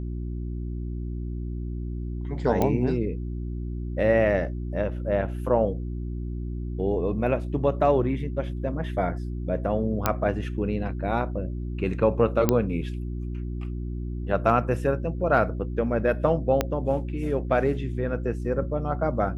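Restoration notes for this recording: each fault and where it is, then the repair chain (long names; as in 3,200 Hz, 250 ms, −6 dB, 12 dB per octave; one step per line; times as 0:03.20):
mains hum 60 Hz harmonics 6 −31 dBFS
0:02.62: click −11 dBFS
0:10.06: click −6 dBFS
0:12.49: click −6 dBFS
0:16.61: click −8 dBFS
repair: click removal
hum removal 60 Hz, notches 6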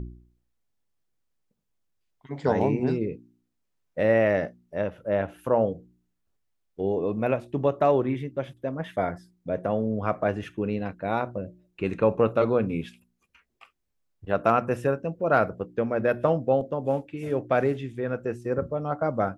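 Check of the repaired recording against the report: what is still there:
0:16.61: click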